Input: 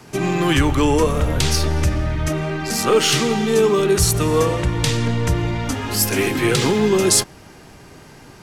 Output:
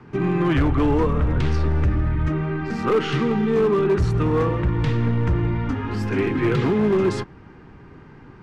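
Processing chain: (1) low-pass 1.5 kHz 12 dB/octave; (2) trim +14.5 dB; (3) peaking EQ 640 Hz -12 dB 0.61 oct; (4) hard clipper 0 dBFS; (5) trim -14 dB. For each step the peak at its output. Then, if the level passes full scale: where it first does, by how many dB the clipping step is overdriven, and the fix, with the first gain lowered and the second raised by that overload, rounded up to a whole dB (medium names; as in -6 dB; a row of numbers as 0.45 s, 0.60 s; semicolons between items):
-5.5 dBFS, +9.0 dBFS, +7.5 dBFS, 0.0 dBFS, -14.0 dBFS; step 2, 7.5 dB; step 2 +6.5 dB, step 5 -6 dB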